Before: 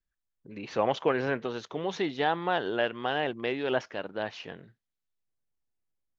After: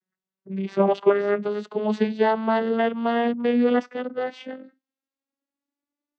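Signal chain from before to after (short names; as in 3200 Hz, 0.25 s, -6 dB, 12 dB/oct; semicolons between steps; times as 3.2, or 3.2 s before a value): vocoder on a gliding note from F#3, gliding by +8 st; gain +8.5 dB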